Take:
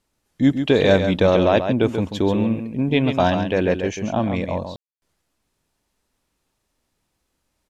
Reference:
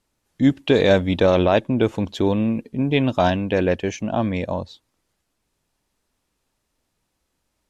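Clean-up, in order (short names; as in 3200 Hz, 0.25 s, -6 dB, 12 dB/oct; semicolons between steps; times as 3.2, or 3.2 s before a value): room tone fill 4.76–5.02; inverse comb 0.136 s -8 dB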